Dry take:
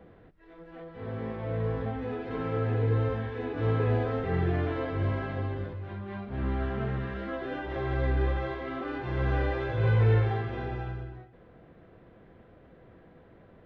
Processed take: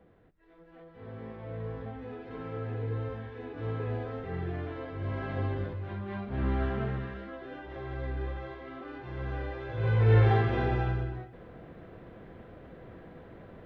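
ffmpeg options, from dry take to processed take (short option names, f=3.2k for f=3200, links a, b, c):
-af "volume=15dB,afade=t=in:st=5.01:d=0.43:silence=0.375837,afade=t=out:st=6.65:d=0.66:silence=0.354813,afade=t=in:st=9.63:d=0.42:silence=0.446684,afade=t=in:st=10.05:d=0.26:silence=0.446684"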